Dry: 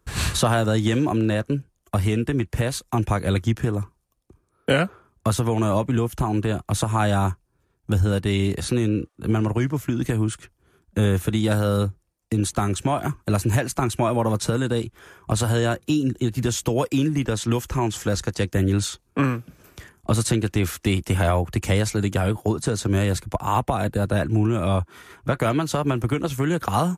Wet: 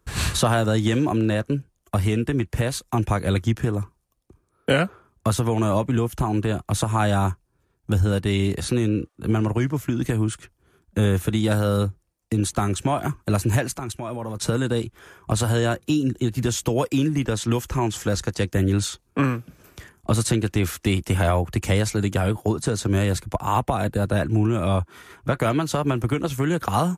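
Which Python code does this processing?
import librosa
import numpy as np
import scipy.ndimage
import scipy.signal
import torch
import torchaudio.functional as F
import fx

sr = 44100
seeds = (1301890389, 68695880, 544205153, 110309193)

y = fx.level_steps(x, sr, step_db=15, at=(13.78, 14.4))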